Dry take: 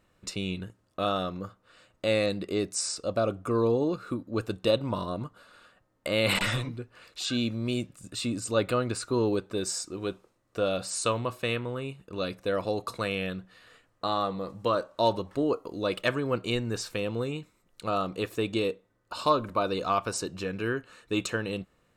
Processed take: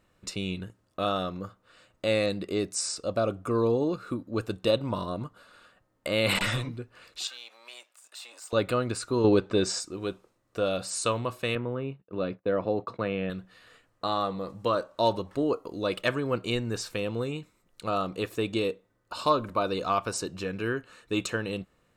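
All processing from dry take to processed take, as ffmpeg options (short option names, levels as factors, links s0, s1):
-filter_complex "[0:a]asettb=1/sr,asplit=3[s0][s1][s2];[s0]atrim=end=7.274[s3];[s1]atrim=start=7.27:end=8.53,asetpts=PTS-STARTPTS,afade=t=in:d=0.004:c=qsin,afade=t=out:st=1.256:d=0.004:c=qsin,aeval=exprs='if(lt(val(0),0),0.447*val(0),val(0))':c=same,highpass=f=680:w=0.5412,highpass=f=680:w=1.3066,acompressor=threshold=0.00631:ratio=2:attack=3.2:release=140:knee=1:detection=peak[s4];[s2]atrim=start=8.526[s5];[s3][s4]acrossfade=d=0.004:c1=hsin:c2=qsin[s6];[s6][s5]acrossfade=d=0.004:c1=qsin:c2=hsin,asettb=1/sr,asplit=3[s7][s8][s9];[s7]atrim=end=9.244[s10];[s8]atrim=start=9.24:end=9.8,asetpts=PTS-STARTPTS,afade=t=in:d=0.004:c=qsin,afade=t=out:st=0.556:d=0.004:c=qsin,lowpass=5200,acontrast=66[s11];[s9]atrim=start=9.796[s12];[s10][s11]acrossfade=d=0.004:c1=hsin:c2=qsin[s13];[s13][s12]acrossfade=d=0.004:c1=qsin:c2=hsin,asettb=1/sr,asplit=3[s14][s15][s16];[s14]atrim=end=11.554[s17];[s15]atrim=start=11.55:end=13.3,asetpts=PTS-STARTPTS,afade=t=in:d=0.004:c=qsin,afade=t=out:st=1.746:d=0.004:c=qsin,agate=range=0.0224:threshold=0.00794:ratio=3:release=100:detection=peak,highpass=110,lowpass=2600,tiltshelf=f=880:g=3.5[s18];[s16]atrim=start=13.296[s19];[s17][s18]acrossfade=d=0.004:c1=hsin:c2=qsin[s20];[s20][s19]acrossfade=d=0.004:c1=qsin:c2=hsin"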